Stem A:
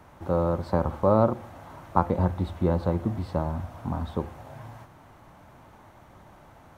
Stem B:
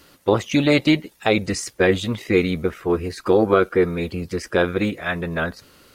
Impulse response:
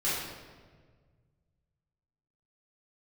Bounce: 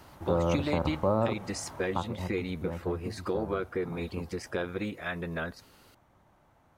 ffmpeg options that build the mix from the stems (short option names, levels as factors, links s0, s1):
-filter_complex "[0:a]volume=0.841,afade=t=out:st=1.79:d=0.36:silence=0.281838[s0];[1:a]acompressor=threshold=0.0708:ratio=2.5,volume=0.398[s1];[s0][s1]amix=inputs=2:normalize=0,alimiter=limit=0.188:level=0:latency=1:release=242"